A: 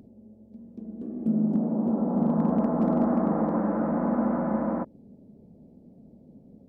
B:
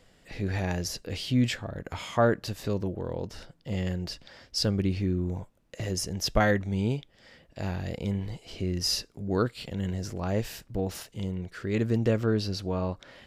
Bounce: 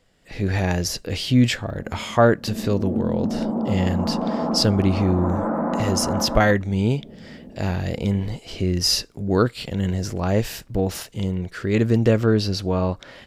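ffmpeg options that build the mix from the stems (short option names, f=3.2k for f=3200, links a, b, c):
-filter_complex "[0:a]acompressor=threshold=-32dB:ratio=6,equalizer=f=1.1k:w=0.56:g=6.5,adelay=1700,volume=-3dB[a];[1:a]volume=-4dB,asplit=2[b][c];[c]apad=whole_len=369899[d];[a][d]sidechaincompress=threshold=-31dB:ratio=8:attack=16:release=233[e];[e][b]amix=inputs=2:normalize=0,dynaudnorm=f=210:g=3:m=12dB"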